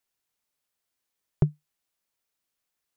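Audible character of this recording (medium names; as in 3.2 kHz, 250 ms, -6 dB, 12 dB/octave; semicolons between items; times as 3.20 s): noise floor -84 dBFS; spectral tilt -11.0 dB/octave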